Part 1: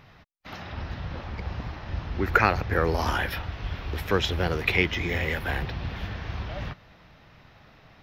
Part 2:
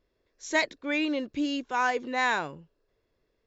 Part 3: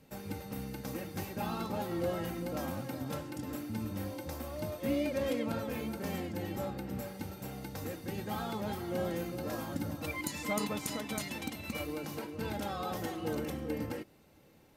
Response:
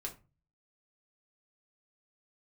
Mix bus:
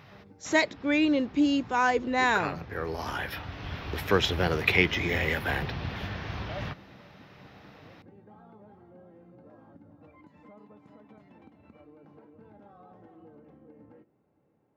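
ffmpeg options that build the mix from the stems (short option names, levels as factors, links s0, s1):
-filter_complex "[0:a]volume=1,asplit=2[s0][s1];[s1]volume=0.141[s2];[1:a]lowshelf=f=410:g=7.5,volume=1,asplit=3[s3][s4][s5];[s4]volume=0.0891[s6];[2:a]lowpass=1200,acompressor=threshold=0.00794:ratio=6,volume=0.316,asplit=2[s7][s8];[s8]volume=0.473[s9];[s5]apad=whole_len=353711[s10];[s0][s10]sidechaincompress=threshold=0.0112:ratio=5:attack=10:release=1060[s11];[3:a]atrim=start_sample=2205[s12];[s2][s6][s9]amix=inputs=3:normalize=0[s13];[s13][s12]afir=irnorm=-1:irlink=0[s14];[s11][s3][s7][s14]amix=inputs=4:normalize=0,highpass=87"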